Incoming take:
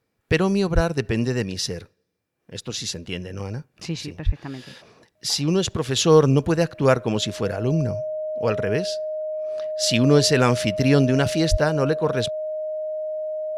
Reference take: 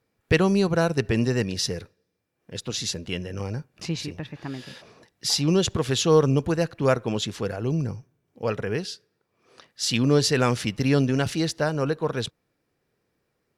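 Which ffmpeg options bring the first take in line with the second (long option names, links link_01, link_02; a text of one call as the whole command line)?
ffmpeg -i in.wav -filter_complex "[0:a]bandreject=frequency=620:width=30,asplit=3[link_01][link_02][link_03];[link_01]afade=type=out:start_time=0.74:duration=0.02[link_04];[link_02]highpass=frequency=140:width=0.5412,highpass=frequency=140:width=1.3066,afade=type=in:start_time=0.74:duration=0.02,afade=type=out:start_time=0.86:duration=0.02[link_05];[link_03]afade=type=in:start_time=0.86:duration=0.02[link_06];[link_04][link_05][link_06]amix=inputs=3:normalize=0,asplit=3[link_07][link_08][link_09];[link_07]afade=type=out:start_time=4.25:duration=0.02[link_10];[link_08]highpass=frequency=140:width=0.5412,highpass=frequency=140:width=1.3066,afade=type=in:start_time=4.25:duration=0.02,afade=type=out:start_time=4.37:duration=0.02[link_11];[link_09]afade=type=in:start_time=4.37:duration=0.02[link_12];[link_10][link_11][link_12]amix=inputs=3:normalize=0,asplit=3[link_13][link_14][link_15];[link_13]afade=type=out:start_time=11.5:duration=0.02[link_16];[link_14]highpass=frequency=140:width=0.5412,highpass=frequency=140:width=1.3066,afade=type=in:start_time=11.5:duration=0.02,afade=type=out:start_time=11.62:duration=0.02[link_17];[link_15]afade=type=in:start_time=11.62:duration=0.02[link_18];[link_16][link_17][link_18]amix=inputs=3:normalize=0,asetnsamples=nb_out_samples=441:pad=0,asendcmd='5.96 volume volume -3.5dB',volume=0dB" out.wav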